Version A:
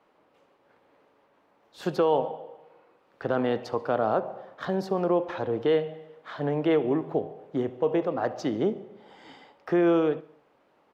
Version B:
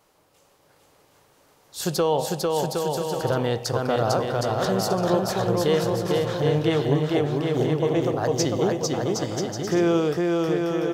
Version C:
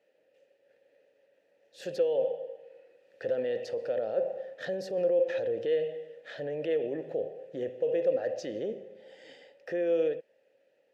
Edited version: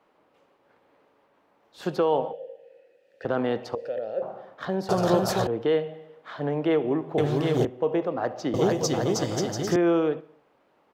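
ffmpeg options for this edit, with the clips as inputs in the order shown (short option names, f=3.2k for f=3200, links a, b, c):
-filter_complex "[2:a]asplit=2[a][b];[1:a]asplit=3[c][d][e];[0:a]asplit=6[f][g][h][i][j][k];[f]atrim=end=2.332[l];[a]atrim=start=2.328:end=3.252[m];[g]atrim=start=3.248:end=3.752[n];[b]atrim=start=3.748:end=4.222[o];[h]atrim=start=4.218:end=4.892[p];[c]atrim=start=4.888:end=5.472[q];[i]atrim=start=5.468:end=7.182[r];[d]atrim=start=7.178:end=7.652[s];[j]atrim=start=7.648:end=8.542[t];[e]atrim=start=8.538:end=9.762[u];[k]atrim=start=9.758[v];[l][m]acrossfade=d=0.004:c1=hsin:c2=hsin[w];[w][n]acrossfade=d=0.004:c1=hsin:c2=hsin[x];[x][o]acrossfade=d=0.004:c1=hsin:c2=hsin[y];[y][p]acrossfade=d=0.004:c1=hsin:c2=hsin[z];[z][q]acrossfade=d=0.004:c1=hsin:c2=hsin[aa];[aa][r]acrossfade=d=0.004:c1=hsin:c2=hsin[ab];[ab][s]acrossfade=d=0.004:c1=hsin:c2=hsin[ac];[ac][t]acrossfade=d=0.004:c1=hsin:c2=hsin[ad];[ad][u]acrossfade=d=0.004:c1=hsin:c2=hsin[ae];[ae][v]acrossfade=d=0.004:c1=hsin:c2=hsin"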